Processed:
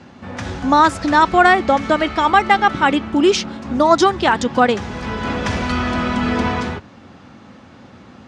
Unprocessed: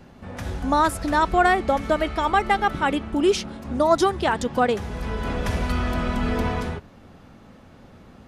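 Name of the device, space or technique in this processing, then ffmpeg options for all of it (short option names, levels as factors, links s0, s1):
car door speaker: -af "highpass=110,equalizer=f=160:t=q:w=4:g=-5,equalizer=f=430:t=q:w=4:g=-5,equalizer=f=640:t=q:w=4:g=-4,lowpass=f=7300:w=0.5412,lowpass=f=7300:w=1.3066,volume=2.51"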